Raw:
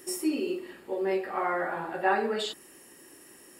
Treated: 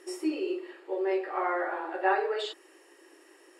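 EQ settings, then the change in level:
linear-phase brick-wall high-pass 290 Hz
high-frequency loss of the air 54 metres
high-shelf EQ 5,300 Hz −6 dB
0.0 dB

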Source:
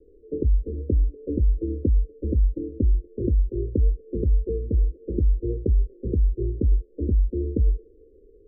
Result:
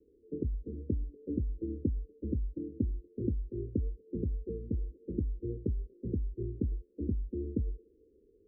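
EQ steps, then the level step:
dynamic equaliser 190 Hz, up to −4 dB, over −43 dBFS, Q 6.2
resonant band-pass 180 Hz, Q 1.4
−2.0 dB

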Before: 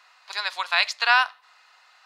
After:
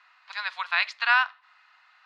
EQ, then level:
high-pass filter 1,200 Hz 12 dB per octave
resonant band-pass 2,000 Hz, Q 0.57
spectral tilt −4.5 dB per octave
+3.5 dB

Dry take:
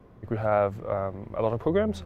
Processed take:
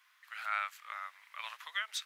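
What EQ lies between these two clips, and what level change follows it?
Bessel high-pass filter 2,400 Hz, order 6
+9.0 dB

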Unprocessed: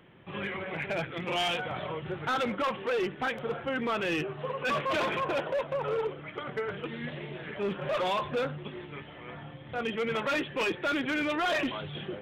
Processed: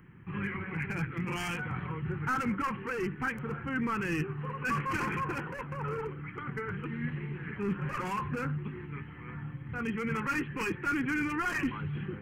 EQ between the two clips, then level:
bass and treble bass +8 dB, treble +4 dB
phaser with its sweep stopped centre 1,500 Hz, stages 4
0.0 dB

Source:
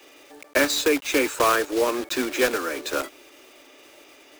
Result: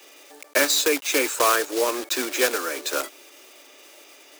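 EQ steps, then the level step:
bass and treble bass −12 dB, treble +6 dB
0.0 dB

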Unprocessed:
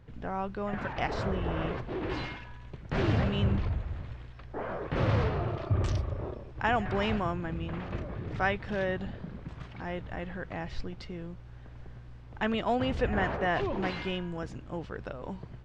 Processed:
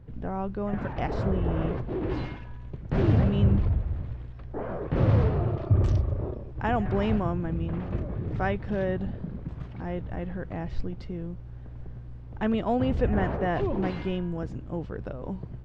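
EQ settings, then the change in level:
tilt shelving filter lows +6.5 dB, about 800 Hz
0.0 dB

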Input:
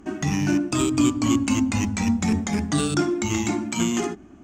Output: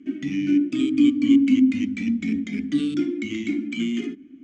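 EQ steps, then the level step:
formant filter i
+7.5 dB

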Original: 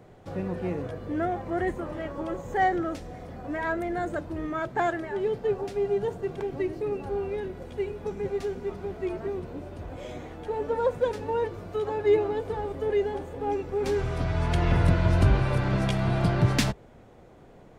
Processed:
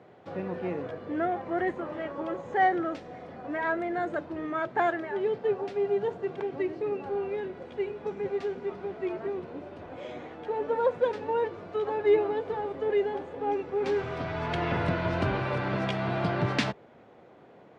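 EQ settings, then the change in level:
band-pass filter 110–3,600 Hz
low-shelf EQ 180 Hz −10.5 dB
+1.0 dB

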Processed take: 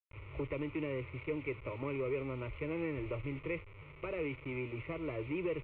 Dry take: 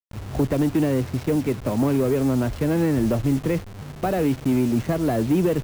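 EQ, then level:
transistor ladder low-pass 2,500 Hz, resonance 70%
phaser with its sweep stopped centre 1,100 Hz, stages 8
−1.5 dB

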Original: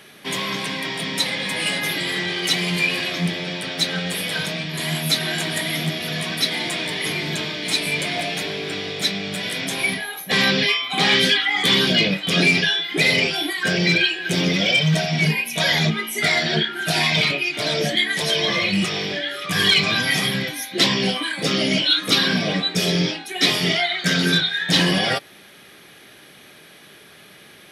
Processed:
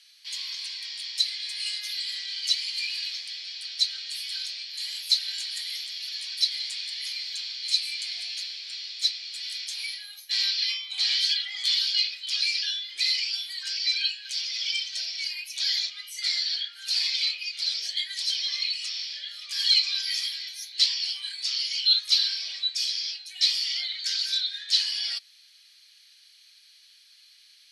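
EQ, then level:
four-pole ladder band-pass 4,400 Hz, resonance 80%
parametric band 3,800 Hz −13 dB 0.35 octaves
+7.0 dB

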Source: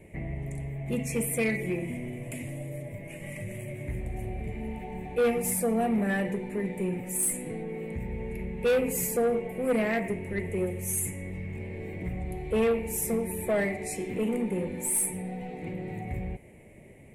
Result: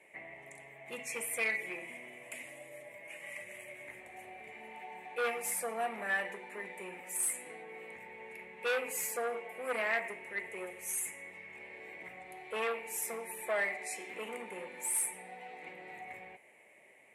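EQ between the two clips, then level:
resonant band-pass 1,100 Hz, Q 1
spectral tilt +4.5 dB per octave
0.0 dB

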